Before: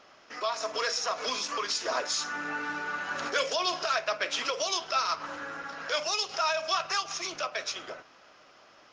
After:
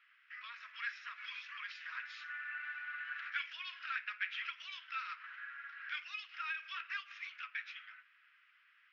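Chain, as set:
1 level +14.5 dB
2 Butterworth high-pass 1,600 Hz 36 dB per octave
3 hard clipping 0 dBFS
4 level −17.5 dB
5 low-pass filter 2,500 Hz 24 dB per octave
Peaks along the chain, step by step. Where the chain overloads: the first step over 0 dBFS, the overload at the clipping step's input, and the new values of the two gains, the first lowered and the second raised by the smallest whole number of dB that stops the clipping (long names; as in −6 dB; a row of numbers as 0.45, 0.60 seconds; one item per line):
−0.5, −2.5, −2.5, −20.0, −24.5 dBFS
no step passes full scale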